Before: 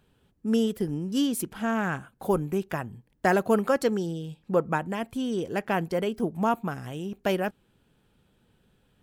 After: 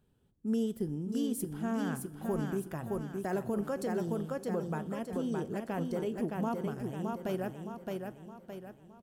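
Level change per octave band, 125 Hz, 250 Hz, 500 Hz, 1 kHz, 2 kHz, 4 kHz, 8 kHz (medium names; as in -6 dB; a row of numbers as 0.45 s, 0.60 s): -4.5 dB, -5.5 dB, -8.0 dB, -10.5 dB, -13.0 dB, -12.5 dB, -7.0 dB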